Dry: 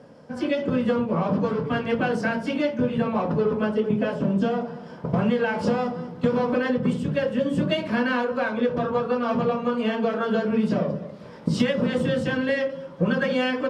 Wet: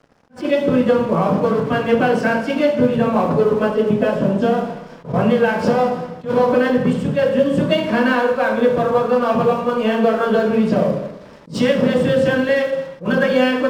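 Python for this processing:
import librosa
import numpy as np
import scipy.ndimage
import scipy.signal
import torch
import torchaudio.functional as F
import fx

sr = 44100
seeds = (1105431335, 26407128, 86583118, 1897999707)

y = fx.dynamic_eq(x, sr, hz=610.0, q=0.83, threshold_db=-35.0, ratio=4.0, max_db=4)
y = np.sign(y) * np.maximum(np.abs(y) - 10.0 ** (-45.5 / 20.0), 0.0)
y = fx.rev_schroeder(y, sr, rt60_s=0.93, comb_ms=28, drr_db=6.5)
y = fx.attack_slew(y, sr, db_per_s=230.0)
y = y * librosa.db_to_amplitude(5.0)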